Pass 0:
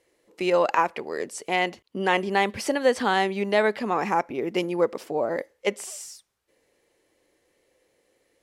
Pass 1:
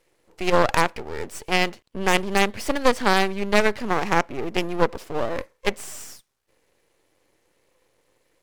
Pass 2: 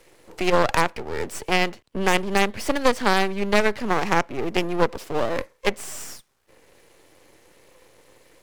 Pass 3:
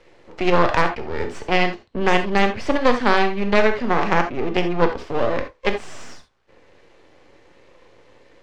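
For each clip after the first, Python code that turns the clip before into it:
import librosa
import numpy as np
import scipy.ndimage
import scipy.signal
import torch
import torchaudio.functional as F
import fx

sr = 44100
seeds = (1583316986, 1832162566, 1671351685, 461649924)

y1 = fx.cheby_harmonics(x, sr, harmonics=(6, 8), levels_db=(-16, -15), full_scale_db=-7.5)
y1 = np.maximum(y1, 0.0)
y1 = y1 * librosa.db_to_amplitude(5.0)
y2 = fx.band_squash(y1, sr, depth_pct=40)
y3 = fx.air_absorb(y2, sr, metres=150.0)
y3 = fx.rev_gated(y3, sr, seeds[0], gate_ms=100, shape='flat', drr_db=5.5)
y3 = y3 * librosa.db_to_amplitude(2.5)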